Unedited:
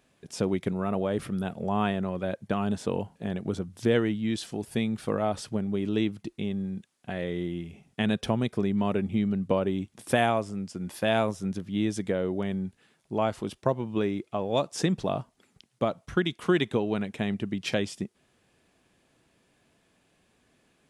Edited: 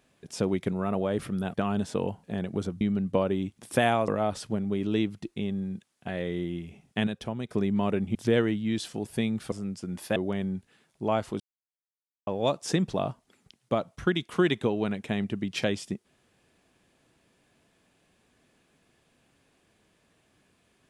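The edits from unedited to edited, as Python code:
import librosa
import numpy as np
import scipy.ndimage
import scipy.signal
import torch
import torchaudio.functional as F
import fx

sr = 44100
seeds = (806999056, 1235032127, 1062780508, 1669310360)

y = fx.edit(x, sr, fx.cut(start_s=1.54, length_s=0.92),
    fx.swap(start_s=3.73, length_s=1.37, other_s=9.17, other_length_s=1.27),
    fx.clip_gain(start_s=8.09, length_s=0.42, db=-7.0),
    fx.cut(start_s=11.08, length_s=1.18),
    fx.silence(start_s=13.5, length_s=0.87), tone=tone)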